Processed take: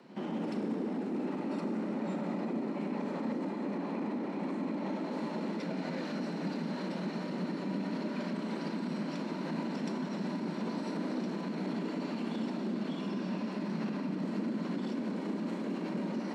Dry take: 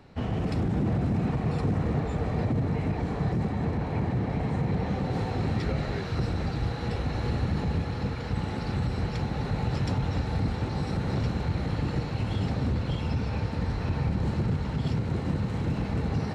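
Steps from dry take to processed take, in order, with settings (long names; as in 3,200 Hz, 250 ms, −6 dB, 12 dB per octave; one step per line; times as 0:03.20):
brickwall limiter −26 dBFS, peak gain reduction 9 dB
frequency shifter +120 Hz
on a send: backwards echo 73 ms −16.5 dB
on the sum: four-comb reverb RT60 2.9 s, combs from 28 ms, DRR 6 dB
level −3.5 dB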